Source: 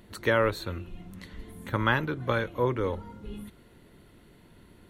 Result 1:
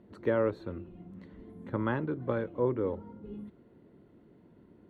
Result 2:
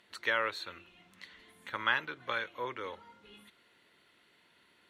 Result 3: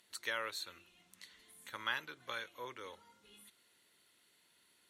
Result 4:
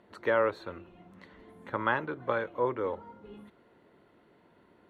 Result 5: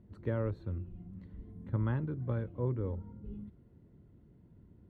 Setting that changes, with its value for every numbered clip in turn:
resonant band-pass, frequency: 300, 2,800, 7,000, 770, 100 Hertz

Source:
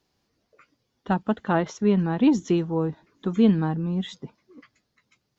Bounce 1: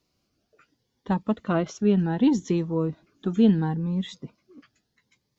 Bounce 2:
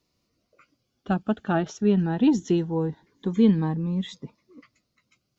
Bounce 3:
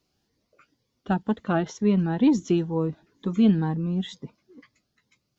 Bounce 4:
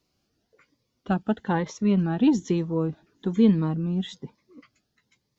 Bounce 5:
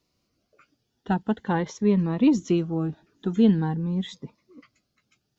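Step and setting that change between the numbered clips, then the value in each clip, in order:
phaser whose notches keep moving one way, speed: 0.72, 0.22, 2.1, 1.1, 0.45 Hertz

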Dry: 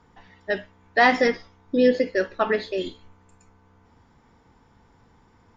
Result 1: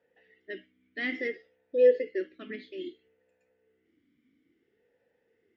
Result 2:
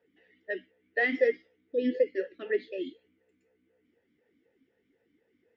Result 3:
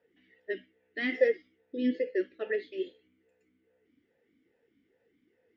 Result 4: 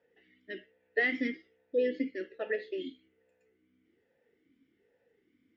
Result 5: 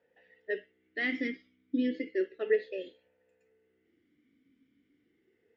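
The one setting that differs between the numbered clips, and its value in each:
formant filter swept between two vowels, speed: 0.59, 4, 2.4, 1.2, 0.33 Hertz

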